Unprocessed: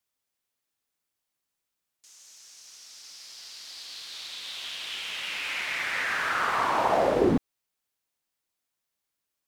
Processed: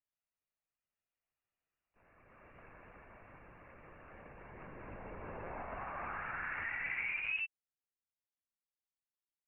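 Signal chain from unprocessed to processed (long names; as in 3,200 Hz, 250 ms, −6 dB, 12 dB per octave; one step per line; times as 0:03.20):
source passing by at 0:02.61, 14 m/s, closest 5.3 metres
voice inversion scrambler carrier 2,900 Hz
linear-prediction vocoder at 8 kHz pitch kept
level +6 dB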